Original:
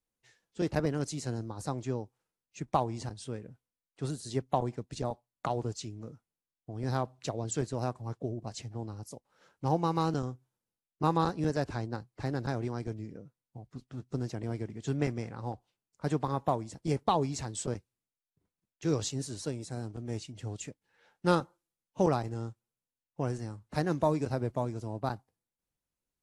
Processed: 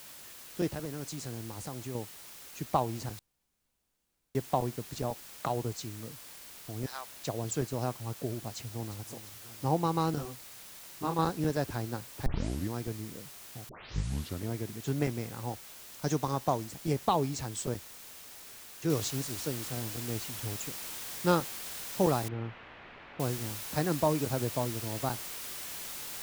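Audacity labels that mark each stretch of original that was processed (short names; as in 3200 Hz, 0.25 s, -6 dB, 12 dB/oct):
0.720000	1.950000	compressor 2.5:1, threshold -37 dBFS
3.190000	4.350000	room tone
6.860000	7.270000	HPF 1400 Hz
8.390000	8.990000	echo throw 0.35 s, feedback 60%, level -13.5 dB
10.150000	11.190000	detuned doubles each way 20 cents
12.260000	12.260000	tape start 0.47 s
13.690000	13.690000	tape start 0.81 s
15.470000	16.650000	synth low-pass 6200 Hz, resonance Q 8.1
18.900000	18.900000	noise floor step -49 dB -41 dB
22.280000	23.200000	LPF 2500 Hz 24 dB/oct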